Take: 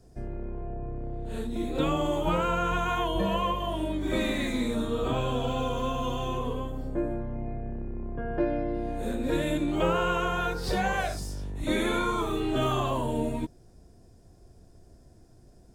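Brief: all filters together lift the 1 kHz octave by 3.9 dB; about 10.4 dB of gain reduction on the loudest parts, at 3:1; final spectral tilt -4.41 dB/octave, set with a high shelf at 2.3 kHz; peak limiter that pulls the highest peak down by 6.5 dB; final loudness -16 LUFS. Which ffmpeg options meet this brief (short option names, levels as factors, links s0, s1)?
-af "equalizer=f=1000:t=o:g=4,highshelf=f=2300:g=4.5,acompressor=threshold=0.0178:ratio=3,volume=12.6,alimiter=limit=0.501:level=0:latency=1"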